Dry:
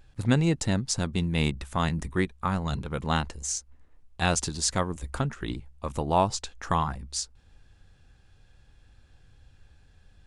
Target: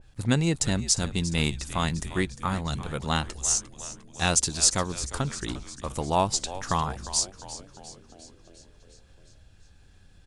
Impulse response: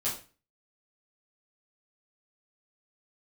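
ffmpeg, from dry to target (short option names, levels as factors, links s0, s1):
-filter_complex "[0:a]equalizer=f=8800:w=0.54:g=5.5,asplit=8[s0][s1][s2][s3][s4][s5][s6][s7];[s1]adelay=352,afreqshift=-100,volume=0.2[s8];[s2]adelay=704,afreqshift=-200,volume=0.122[s9];[s3]adelay=1056,afreqshift=-300,volume=0.0741[s10];[s4]adelay=1408,afreqshift=-400,volume=0.0452[s11];[s5]adelay=1760,afreqshift=-500,volume=0.0275[s12];[s6]adelay=2112,afreqshift=-600,volume=0.0168[s13];[s7]adelay=2464,afreqshift=-700,volume=0.0102[s14];[s0][s8][s9][s10][s11][s12][s13][s14]amix=inputs=8:normalize=0,acompressor=mode=upward:threshold=0.00447:ratio=2.5,adynamicequalizer=threshold=0.00891:dfrequency=2200:dqfactor=0.7:tfrequency=2200:tqfactor=0.7:attack=5:release=100:ratio=0.375:range=1.5:mode=boostabove:tftype=highshelf,volume=0.891"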